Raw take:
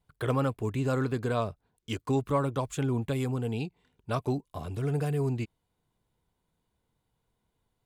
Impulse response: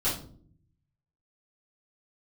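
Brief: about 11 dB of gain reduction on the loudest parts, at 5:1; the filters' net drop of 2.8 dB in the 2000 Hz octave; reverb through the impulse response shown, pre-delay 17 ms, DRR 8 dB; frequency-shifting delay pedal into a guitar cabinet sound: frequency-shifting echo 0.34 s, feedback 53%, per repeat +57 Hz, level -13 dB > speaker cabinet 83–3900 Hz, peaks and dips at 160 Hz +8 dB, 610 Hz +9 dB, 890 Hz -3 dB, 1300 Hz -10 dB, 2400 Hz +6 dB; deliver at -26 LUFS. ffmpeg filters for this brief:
-filter_complex "[0:a]equalizer=f=2k:t=o:g=-4,acompressor=threshold=-36dB:ratio=5,asplit=2[a][b];[1:a]atrim=start_sample=2205,adelay=17[c];[b][c]afir=irnorm=-1:irlink=0,volume=-17dB[d];[a][d]amix=inputs=2:normalize=0,asplit=6[e][f][g][h][i][j];[f]adelay=340,afreqshift=57,volume=-13dB[k];[g]adelay=680,afreqshift=114,volume=-18.5dB[l];[h]adelay=1020,afreqshift=171,volume=-24dB[m];[i]adelay=1360,afreqshift=228,volume=-29.5dB[n];[j]adelay=1700,afreqshift=285,volume=-35.1dB[o];[e][k][l][m][n][o]amix=inputs=6:normalize=0,highpass=83,equalizer=f=160:t=q:w=4:g=8,equalizer=f=610:t=q:w=4:g=9,equalizer=f=890:t=q:w=4:g=-3,equalizer=f=1.3k:t=q:w=4:g=-10,equalizer=f=2.4k:t=q:w=4:g=6,lowpass=f=3.9k:w=0.5412,lowpass=f=3.9k:w=1.3066,volume=10.5dB"

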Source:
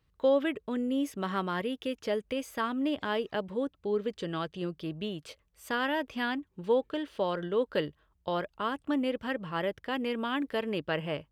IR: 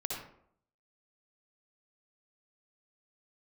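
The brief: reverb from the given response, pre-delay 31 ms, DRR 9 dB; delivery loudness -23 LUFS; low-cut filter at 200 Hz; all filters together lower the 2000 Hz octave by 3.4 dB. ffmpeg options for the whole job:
-filter_complex "[0:a]highpass=200,equalizer=f=2k:t=o:g=-4.5,asplit=2[a][b];[1:a]atrim=start_sample=2205,adelay=31[c];[b][c]afir=irnorm=-1:irlink=0,volume=-11.5dB[d];[a][d]amix=inputs=2:normalize=0,volume=9.5dB"

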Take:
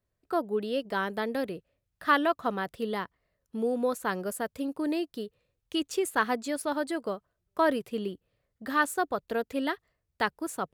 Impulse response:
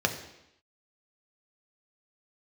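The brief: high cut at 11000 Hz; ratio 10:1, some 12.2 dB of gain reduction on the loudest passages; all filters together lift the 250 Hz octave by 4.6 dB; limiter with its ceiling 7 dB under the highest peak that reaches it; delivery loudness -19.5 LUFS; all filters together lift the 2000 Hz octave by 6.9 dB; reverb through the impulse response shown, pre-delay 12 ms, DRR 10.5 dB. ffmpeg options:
-filter_complex "[0:a]lowpass=11k,equalizer=f=250:t=o:g=5.5,equalizer=f=2k:t=o:g=9,acompressor=threshold=-26dB:ratio=10,alimiter=limit=-22.5dB:level=0:latency=1,asplit=2[a][b];[1:a]atrim=start_sample=2205,adelay=12[c];[b][c]afir=irnorm=-1:irlink=0,volume=-21dB[d];[a][d]amix=inputs=2:normalize=0,volume=14dB"

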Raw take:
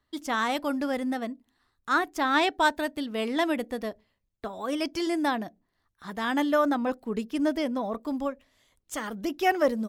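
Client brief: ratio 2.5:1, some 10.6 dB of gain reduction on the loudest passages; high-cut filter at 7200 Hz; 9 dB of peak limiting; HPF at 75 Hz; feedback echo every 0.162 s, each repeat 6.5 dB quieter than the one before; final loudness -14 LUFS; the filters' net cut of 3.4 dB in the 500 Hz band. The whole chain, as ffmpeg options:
-af "highpass=75,lowpass=7.2k,equalizer=f=500:t=o:g=-4.5,acompressor=threshold=-36dB:ratio=2.5,alimiter=level_in=7.5dB:limit=-24dB:level=0:latency=1,volume=-7.5dB,aecho=1:1:162|324|486|648|810|972:0.473|0.222|0.105|0.0491|0.0231|0.0109,volume=25.5dB"

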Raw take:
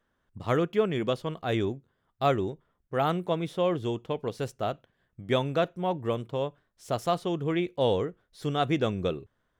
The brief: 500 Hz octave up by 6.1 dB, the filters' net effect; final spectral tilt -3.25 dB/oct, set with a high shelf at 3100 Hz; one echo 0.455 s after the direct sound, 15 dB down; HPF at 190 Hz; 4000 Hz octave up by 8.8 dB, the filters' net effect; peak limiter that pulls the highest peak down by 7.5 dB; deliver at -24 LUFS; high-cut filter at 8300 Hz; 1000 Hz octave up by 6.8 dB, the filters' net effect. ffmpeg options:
-af "highpass=190,lowpass=8.3k,equalizer=f=500:t=o:g=5.5,equalizer=f=1k:t=o:g=6.5,highshelf=f=3.1k:g=4.5,equalizer=f=4k:t=o:g=7.5,alimiter=limit=-12dB:level=0:latency=1,aecho=1:1:455:0.178,volume=2dB"

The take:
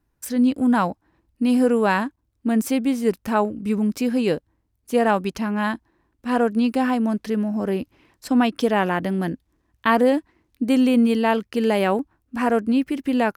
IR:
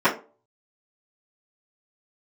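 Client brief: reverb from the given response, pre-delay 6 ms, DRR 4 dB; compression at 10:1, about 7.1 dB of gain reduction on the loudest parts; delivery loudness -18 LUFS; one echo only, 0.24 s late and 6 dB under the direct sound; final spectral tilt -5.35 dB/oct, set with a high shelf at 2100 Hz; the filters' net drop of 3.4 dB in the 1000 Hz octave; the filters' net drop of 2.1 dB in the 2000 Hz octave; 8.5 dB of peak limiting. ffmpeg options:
-filter_complex "[0:a]equalizer=f=1k:t=o:g=-5,equalizer=f=2k:t=o:g=-5,highshelf=f=2.1k:g=7.5,acompressor=threshold=-21dB:ratio=10,alimiter=limit=-18.5dB:level=0:latency=1,aecho=1:1:240:0.501,asplit=2[a][b];[1:a]atrim=start_sample=2205,adelay=6[c];[b][c]afir=irnorm=-1:irlink=0,volume=-24dB[d];[a][d]amix=inputs=2:normalize=0,volume=7.5dB"

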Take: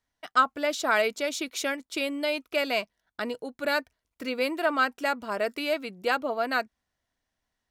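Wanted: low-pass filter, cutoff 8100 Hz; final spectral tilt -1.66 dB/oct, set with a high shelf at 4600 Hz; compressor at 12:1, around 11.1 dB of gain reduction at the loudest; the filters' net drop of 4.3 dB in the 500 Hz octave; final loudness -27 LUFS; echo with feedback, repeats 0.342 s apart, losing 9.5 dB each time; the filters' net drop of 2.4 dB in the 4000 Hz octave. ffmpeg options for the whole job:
-af "lowpass=8.1k,equalizer=f=500:t=o:g=-5.5,equalizer=f=4k:t=o:g=-6,highshelf=f=4.6k:g=6,acompressor=threshold=-27dB:ratio=12,aecho=1:1:342|684|1026|1368:0.335|0.111|0.0365|0.012,volume=6.5dB"

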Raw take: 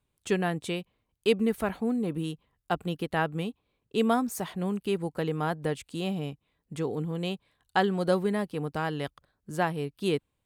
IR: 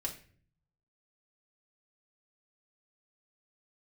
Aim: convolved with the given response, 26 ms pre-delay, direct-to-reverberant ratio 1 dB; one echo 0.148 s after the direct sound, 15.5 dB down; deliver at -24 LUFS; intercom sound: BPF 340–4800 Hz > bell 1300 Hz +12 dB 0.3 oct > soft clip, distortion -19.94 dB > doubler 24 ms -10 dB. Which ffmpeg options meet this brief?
-filter_complex "[0:a]aecho=1:1:148:0.168,asplit=2[a][b];[1:a]atrim=start_sample=2205,adelay=26[c];[b][c]afir=irnorm=-1:irlink=0,volume=-1.5dB[d];[a][d]amix=inputs=2:normalize=0,highpass=340,lowpass=4.8k,equalizer=f=1.3k:t=o:w=0.3:g=12,asoftclip=threshold=-12.5dB,asplit=2[e][f];[f]adelay=24,volume=-10dB[g];[e][g]amix=inputs=2:normalize=0,volume=5dB"

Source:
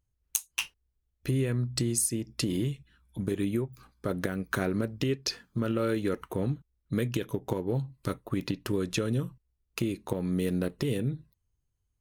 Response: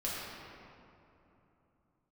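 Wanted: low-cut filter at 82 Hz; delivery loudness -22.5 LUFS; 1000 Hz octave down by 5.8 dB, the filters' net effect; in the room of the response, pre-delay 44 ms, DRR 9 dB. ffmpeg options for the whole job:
-filter_complex "[0:a]highpass=82,equalizer=f=1k:t=o:g=-8.5,asplit=2[a][b];[1:a]atrim=start_sample=2205,adelay=44[c];[b][c]afir=irnorm=-1:irlink=0,volume=-14dB[d];[a][d]amix=inputs=2:normalize=0,volume=9.5dB"

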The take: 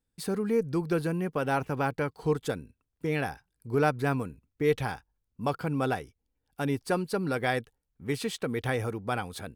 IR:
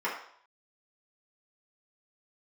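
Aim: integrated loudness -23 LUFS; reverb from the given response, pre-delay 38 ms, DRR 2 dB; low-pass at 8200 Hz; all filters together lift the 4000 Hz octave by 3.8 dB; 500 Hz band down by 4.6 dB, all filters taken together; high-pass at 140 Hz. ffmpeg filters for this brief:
-filter_complex "[0:a]highpass=140,lowpass=8.2k,equalizer=f=500:t=o:g=-5.5,equalizer=f=4k:t=o:g=5,asplit=2[a][b];[1:a]atrim=start_sample=2205,adelay=38[c];[b][c]afir=irnorm=-1:irlink=0,volume=-11.5dB[d];[a][d]amix=inputs=2:normalize=0,volume=8.5dB"

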